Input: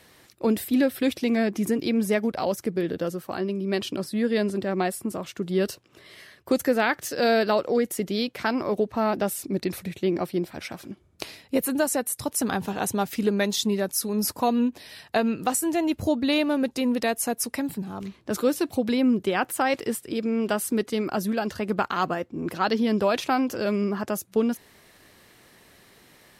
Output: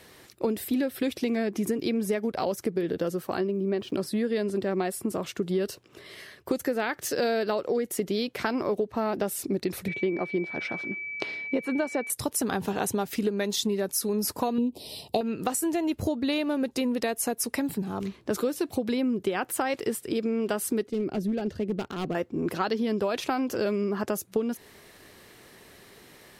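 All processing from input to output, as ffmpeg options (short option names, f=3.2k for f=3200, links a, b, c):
-filter_complex "[0:a]asettb=1/sr,asplit=3[a][b][c];[a]atrim=end=3.474[d];[b]atrim=start=3.47:end=3.94,asetpts=PTS-STARTPTS,afade=t=in:d=0.004:c=qsin,afade=t=out:st=0.466:d=0.004:c=qsin,lowpass=f=1.3k:p=1,aeval=exprs='val(0)*gte(abs(val(0)),0.00188)':c=same[e];[c]atrim=start=3.936[f];[d][e]acrossfade=d=0.004:c1=hsin:c2=qsin[g];[g][f]acrossfade=d=0.004:c1=qsin:c2=hsin,asettb=1/sr,asplit=3[h][i][j];[h]atrim=end=9.884[k];[i]atrim=start=9.88:end=12.1,asetpts=PTS-STARTPTS,afade=t=in:d=0.004:c=qsin,afade=t=out:st=2.216:d=0.004:c=qsin,aeval=exprs='val(0)+0.02*sin(2*PI*2300*n/s)':c=same,highpass=140,lowpass=3.3k[l];[j]atrim=start=12.096[m];[k][l]acrossfade=d=0.004:c1=hsin:c2=qsin[n];[n][m]acrossfade=d=0.004:c1=qsin:c2=hsin,asettb=1/sr,asplit=3[o][p][q];[o]atrim=end=14.584[r];[p]atrim=start=14.58:end=15.21,asetpts=PTS-STARTPTS,afade=t=in:d=0.004:c=qsin,afade=t=out:st=0.626:d=0.004:c=qsin,equalizer=f=6.3k:t=o:w=0.27:g=-11,acontrast=30,asuperstop=centerf=1600:order=4:qfactor=0.66[s];[q]atrim=start=15.206[t];[r][s]acrossfade=d=0.004:c1=hsin:c2=qsin[u];[u][t]acrossfade=d=0.004:c1=qsin:c2=hsin,asettb=1/sr,asplit=3[v][w][x];[v]atrim=end=20.874[y];[w]atrim=start=20.87:end=22.15,asetpts=PTS-STARTPTS,afade=t=in:d=0.004:c=qsin,afade=t=out:st=1.276:d=0.004:c=qsin,lowpass=f=1.4k:p=1,asoftclip=type=hard:threshold=-22dB,equalizer=f=1.1k:t=o:w=1.6:g=-13.5[z];[x]atrim=start=22.146[aa];[y][z]acrossfade=d=0.004:c1=hsin:c2=qsin[ab];[ab][aa]acrossfade=d=0.004:c1=qsin:c2=hsin,equalizer=f=410:t=o:w=0.45:g=4.5,acompressor=threshold=-26dB:ratio=6,volume=2dB"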